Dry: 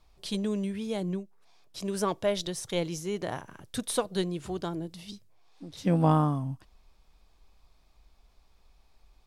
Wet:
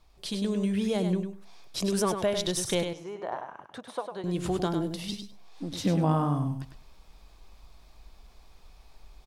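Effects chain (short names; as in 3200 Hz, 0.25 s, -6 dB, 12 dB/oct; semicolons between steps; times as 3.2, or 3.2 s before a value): compressor 3:1, threshold -34 dBFS, peak gain reduction 11.5 dB; 2.83–4.24 band-pass 860 Hz, Q 1.6; feedback echo 0.101 s, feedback 16%, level -7 dB; AGC gain up to 6.5 dB; gain +1.5 dB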